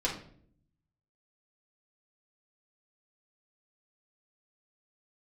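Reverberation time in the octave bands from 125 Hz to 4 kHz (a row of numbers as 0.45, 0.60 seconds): 1.2, 0.95, 0.70, 0.50, 0.45, 0.40 seconds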